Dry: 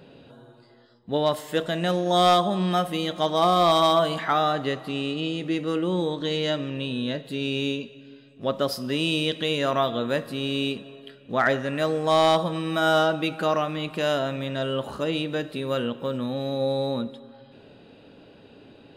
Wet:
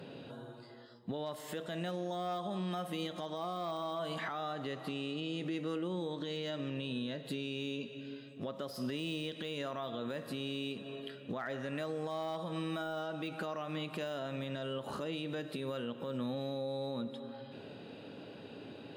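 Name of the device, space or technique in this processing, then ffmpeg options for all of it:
podcast mastering chain: -af "highpass=f=95:w=0.5412,highpass=f=95:w=1.3066,deesser=0.75,acompressor=threshold=-35dB:ratio=4,alimiter=level_in=6dB:limit=-24dB:level=0:latency=1:release=82,volume=-6dB,volume=1.5dB" -ar 44100 -c:a libmp3lame -b:a 128k

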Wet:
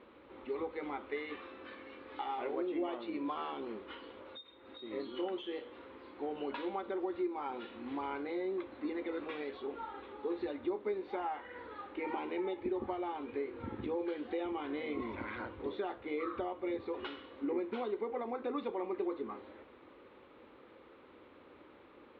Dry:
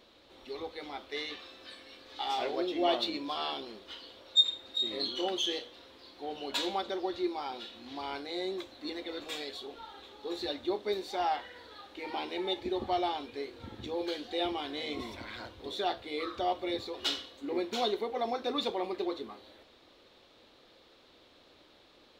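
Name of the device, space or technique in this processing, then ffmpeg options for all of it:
bass amplifier: -af "acompressor=threshold=-39dB:ratio=4,highpass=63,equalizer=f=75:t=q:w=4:g=-6,equalizer=f=120:t=q:w=4:g=-6,equalizer=f=180:t=q:w=4:g=-4,equalizer=f=680:t=q:w=4:g=-10,equalizer=f=1.7k:t=q:w=4:g=-5,lowpass=f=2.1k:w=0.5412,lowpass=f=2.1k:w=1.3066,volume=6.5dB"

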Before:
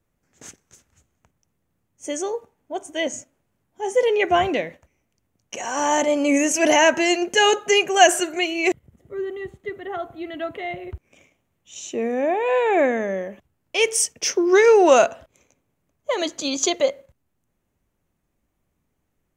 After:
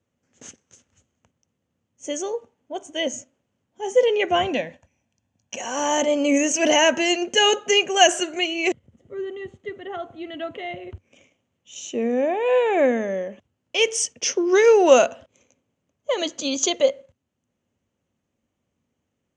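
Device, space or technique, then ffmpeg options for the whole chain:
car door speaker: -filter_complex "[0:a]asettb=1/sr,asplit=3[a][b][c];[a]atrim=end=4.514[d];[b]atrim=start=4.51:end=5.58,asetpts=PTS-STARTPTS,afade=t=in:d=0.004:c=qsin,afade=t=out:st=1.066:d=0.004:c=qsin,aecho=1:1:1.2:0.51,atrim=end_sample=47187[e];[c]atrim=start=5.576[f];[d][e]acrossfade=d=0.004:c1=hsin:c2=qsin[g];[g][f]acrossfade=d=0.004:c1=qsin:c2=hsin,highpass=81,equalizer=f=95:t=q:w=4:g=5,equalizer=f=240:t=q:w=4:g=7,equalizer=f=520:t=q:w=4:g=6,equalizer=f=3k:t=q:w=4:g=7,equalizer=f=6.4k:t=q:w=4:g=5,lowpass=f=8k:w=0.5412,lowpass=f=8k:w=1.3066,volume=-3.5dB"

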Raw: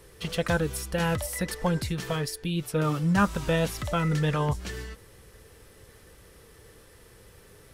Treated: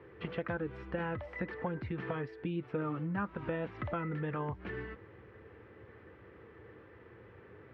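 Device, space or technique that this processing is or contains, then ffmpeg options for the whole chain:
bass amplifier: -af "acompressor=threshold=-32dB:ratio=5,highpass=f=81:w=0.5412,highpass=f=81:w=1.3066,equalizer=f=160:t=q:w=4:g=-5,equalizer=f=330:t=q:w=4:g=5,equalizer=f=610:t=q:w=4:g=-3,lowpass=f=2.2k:w=0.5412,lowpass=f=2.2k:w=1.3066"

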